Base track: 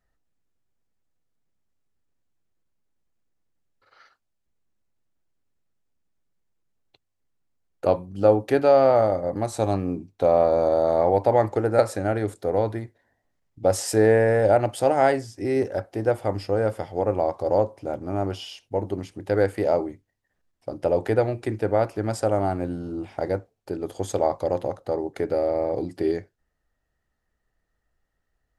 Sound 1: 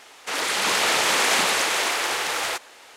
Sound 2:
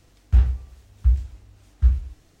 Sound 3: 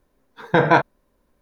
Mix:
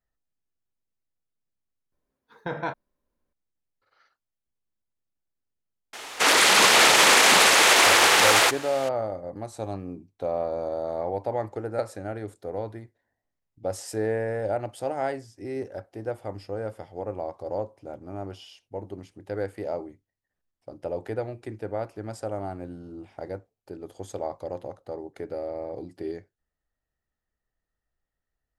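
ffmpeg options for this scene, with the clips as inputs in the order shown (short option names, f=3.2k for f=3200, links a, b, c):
-filter_complex "[0:a]volume=-9.5dB[a];[1:a]alimiter=level_in=14.5dB:limit=-1dB:release=50:level=0:latency=1[b];[3:a]atrim=end=1.41,asetpts=PTS-STARTPTS,volume=-15.5dB,afade=t=in:d=0.004:c=hsin,afade=t=out:st=1.406:d=0.004:c=hsin,adelay=1920[c];[b]atrim=end=2.96,asetpts=PTS-STARTPTS,volume=-6dB,afade=t=in:d=0.004:c=hsin,afade=t=out:st=2.956:d=0.004:c=hsin,adelay=261513S[d];[a][c][d]amix=inputs=3:normalize=0"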